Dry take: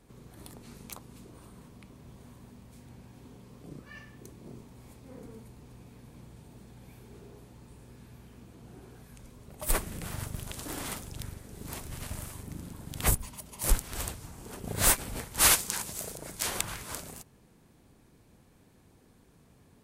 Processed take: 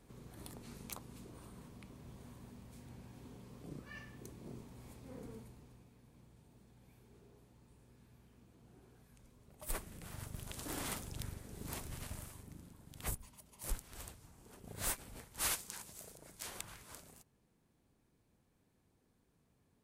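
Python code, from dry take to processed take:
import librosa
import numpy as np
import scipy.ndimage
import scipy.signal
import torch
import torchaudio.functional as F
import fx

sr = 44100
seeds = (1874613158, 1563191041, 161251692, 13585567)

y = fx.gain(x, sr, db=fx.line((5.34, -3.0), (5.93, -12.5), (9.99, -12.5), (10.76, -4.0), (11.78, -4.0), (12.77, -14.5)))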